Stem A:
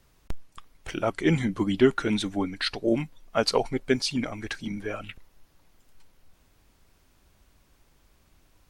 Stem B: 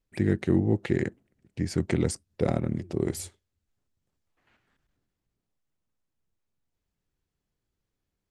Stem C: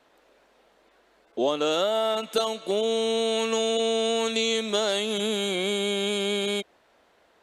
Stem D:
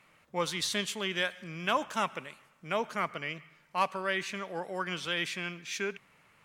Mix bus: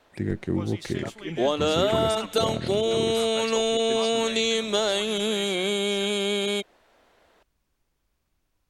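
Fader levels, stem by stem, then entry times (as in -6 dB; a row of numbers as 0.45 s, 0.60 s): -13.0 dB, -3.5 dB, +1.0 dB, -9.5 dB; 0.00 s, 0.00 s, 0.00 s, 0.20 s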